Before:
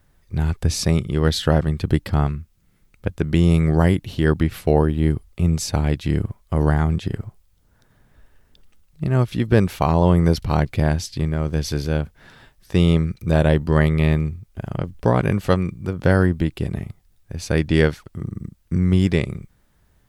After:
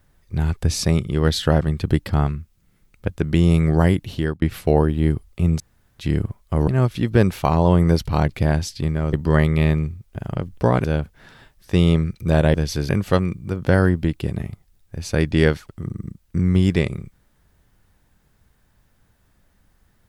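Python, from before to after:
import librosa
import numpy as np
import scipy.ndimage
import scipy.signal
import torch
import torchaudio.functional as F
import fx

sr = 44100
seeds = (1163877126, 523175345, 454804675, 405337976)

y = fx.edit(x, sr, fx.fade_out_span(start_s=4.14, length_s=0.28),
    fx.room_tone_fill(start_s=5.6, length_s=0.39),
    fx.cut(start_s=6.68, length_s=2.37),
    fx.swap(start_s=11.5, length_s=0.35, other_s=13.55, other_length_s=1.71), tone=tone)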